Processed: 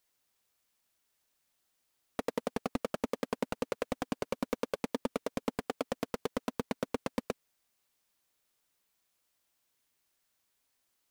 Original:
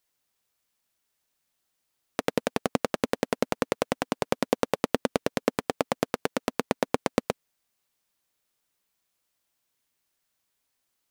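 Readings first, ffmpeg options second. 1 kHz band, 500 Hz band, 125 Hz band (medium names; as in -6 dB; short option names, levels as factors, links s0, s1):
-9.0 dB, -8.0 dB, -8.0 dB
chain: -af "equalizer=f=150:w=2.1:g=-2.5,volume=14.1,asoftclip=hard,volume=0.0708"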